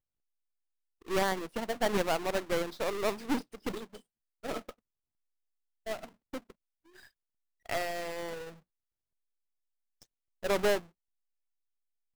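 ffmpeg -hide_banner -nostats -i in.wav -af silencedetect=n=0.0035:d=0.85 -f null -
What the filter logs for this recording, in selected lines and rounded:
silence_start: 0.00
silence_end: 1.02 | silence_duration: 1.02
silence_start: 4.71
silence_end: 5.86 | silence_duration: 1.15
silence_start: 8.54
silence_end: 10.02 | silence_duration: 1.47
silence_start: 10.83
silence_end: 12.15 | silence_duration: 1.32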